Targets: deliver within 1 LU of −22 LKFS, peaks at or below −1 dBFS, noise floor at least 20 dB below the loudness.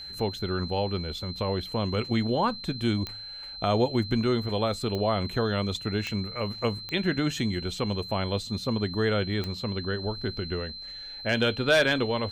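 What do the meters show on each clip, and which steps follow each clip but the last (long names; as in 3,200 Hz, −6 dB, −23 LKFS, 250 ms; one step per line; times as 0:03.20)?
number of clicks 5; interfering tone 4,100 Hz; level of the tone −38 dBFS; integrated loudness −28.0 LKFS; sample peak −11.5 dBFS; target loudness −22.0 LKFS
→ click removal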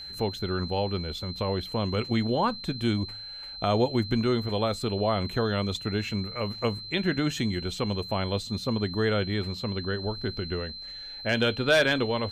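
number of clicks 0; interfering tone 4,100 Hz; level of the tone −38 dBFS
→ notch filter 4,100 Hz, Q 30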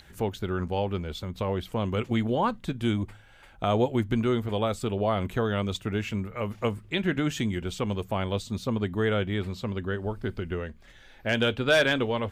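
interfering tone none found; integrated loudness −28.5 LKFS; sample peak −10.0 dBFS; target loudness −22.0 LKFS
→ level +6.5 dB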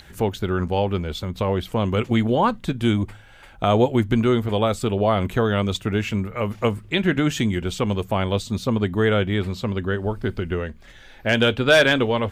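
integrated loudness −22.0 LKFS; sample peak −3.5 dBFS; background noise floor −46 dBFS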